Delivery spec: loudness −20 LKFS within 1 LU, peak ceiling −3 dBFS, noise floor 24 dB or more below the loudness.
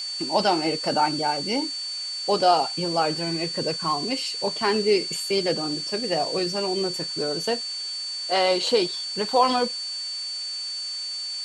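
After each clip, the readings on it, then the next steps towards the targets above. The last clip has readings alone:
interfering tone 4,500 Hz; level of the tone −29 dBFS; background noise floor −32 dBFS; target noise floor −48 dBFS; integrated loudness −24.0 LKFS; sample peak −7.0 dBFS; target loudness −20.0 LKFS
→ notch filter 4,500 Hz, Q 30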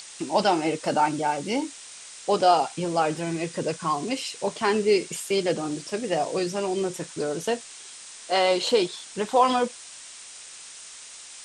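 interfering tone none found; background noise floor −44 dBFS; target noise floor −50 dBFS
→ noise reduction from a noise print 6 dB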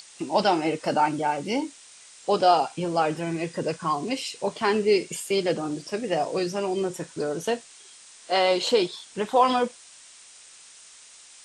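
background noise floor −50 dBFS; integrated loudness −25.5 LKFS; sample peak −7.5 dBFS; target loudness −20.0 LKFS
→ level +5.5 dB
brickwall limiter −3 dBFS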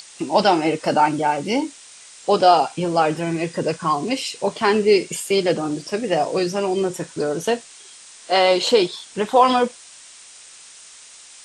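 integrated loudness −20.0 LKFS; sample peak −3.0 dBFS; background noise floor −44 dBFS

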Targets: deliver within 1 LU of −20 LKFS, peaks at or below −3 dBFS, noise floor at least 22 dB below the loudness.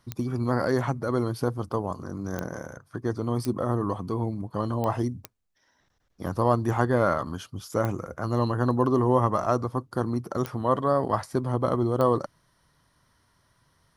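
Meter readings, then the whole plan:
number of clicks 8; integrated loudness −27.0 LKFS; sample peak −6.5 dBFS; target loudness −20.0 LKFS
→ click removal
level +7 dB
brickwall limiter −3 dBFS

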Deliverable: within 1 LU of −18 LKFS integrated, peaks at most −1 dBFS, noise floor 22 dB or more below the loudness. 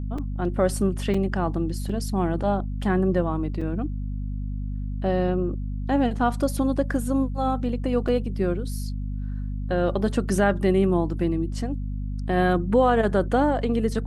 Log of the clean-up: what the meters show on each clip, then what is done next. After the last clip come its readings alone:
number of dropouts 5; longest dropout 4.4 ms; mains hum 50 Hz; hum harmonics up to 250 Hz; level of the hum −26 dBFS; integrated loudness −25.0 LKFS; sample peak −8.0 dBFS; target loudness −18.0 LKFS
→ repair the gap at 0:00.18/0:01.14/0:01.89/0:03.61/0:08.08, 4.4 ms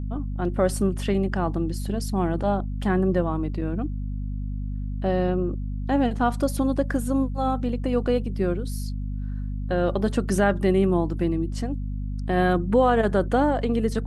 number of dropouts 0; mains hum 50 Hz; hum harmonics up to 250 Hz; level of the hum −26 dBFS
→ mains-hum notches 50/100/150/200/250 Hz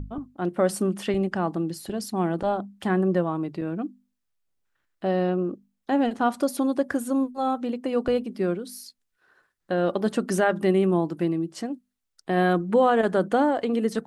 mains hum none found; integrated loudness −25.0 LKFS; sample peak −9.0 dBFS; target loudness −18.0 LKFS
→ level +7 dB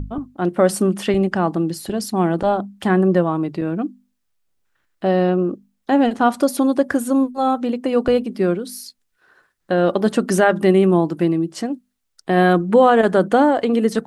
integrated loudness −18.0 LKFS; sample peak −2.0 dBFS; background noise floor −71 dBFS

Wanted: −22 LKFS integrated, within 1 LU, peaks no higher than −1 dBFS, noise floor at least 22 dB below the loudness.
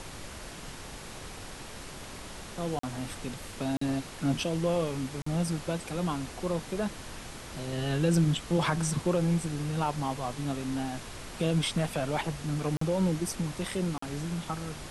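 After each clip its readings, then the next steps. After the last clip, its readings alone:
number of dropouts 5; longest dropout 44 ms; background noise floor −44 dBFS; target noise floor −53 dBFS; integrated loudness −31.0 LKFS; sample peak −15.0 dBFS; target loudness −22.0 LKFS
→ repair the gap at 0:02.79/0:03.77/0:05.22/0:12.77/0:13.98, 44 ms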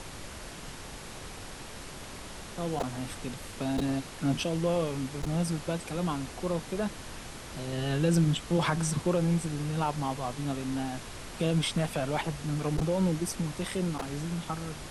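number of dropouts 0; background noise floor −44 dBFS; target noise floor −53 dBFS
→ noise reduction from a noise print 9 dB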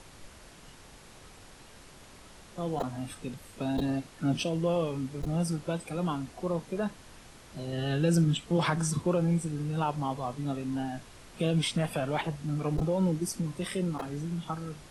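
background noise floor −52 dBFS; target noise floor −54 dBFS
→ noise reduction from a noise print 6 dB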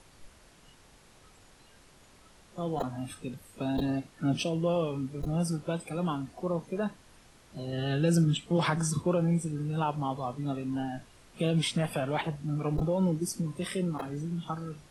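background noise floor −58 dBFS; integrated loudness −31.5 LKFS; sample peak −15.5 dBFS; target loudness −22.0 LKFS
→ level +9.5 dB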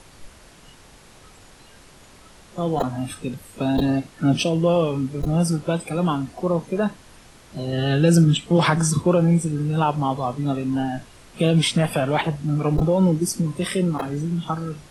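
integrated loudness −22.0 LKFS; sample peak −6.0 dBFS; background noise floor −49 dBFS

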